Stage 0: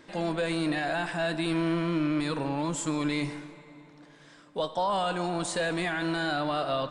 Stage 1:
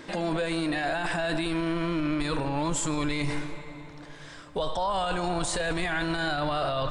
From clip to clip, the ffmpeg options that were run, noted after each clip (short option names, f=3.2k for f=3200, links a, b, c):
-af "asubboost=boost=10.5:cutoff=69,alimiter=level_in=5.5dB:limit=-24dB:level=0:latency=1:release=10,volume=-5.5dB,volume=9dB"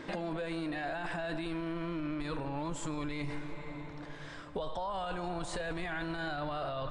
-af "highshelf=f=4.6k:g=-11,acompressor=threshold=-35dB:ratio=4"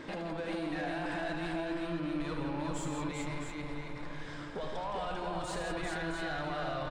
-filter_complex "[0:a]asoftclip=type=tanh:threshold=-32.5dB,asplit=2[a][b];[b]aecho=0:1:76|166|395|662:0.398|0.473|0.668|0.422[c];[a][c]amix=inputs=2:normalize=0"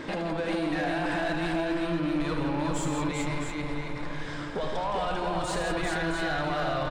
-af "volume=29.5dB,asoftclip=hard,volume=-29.5dB,volume=7.5dB"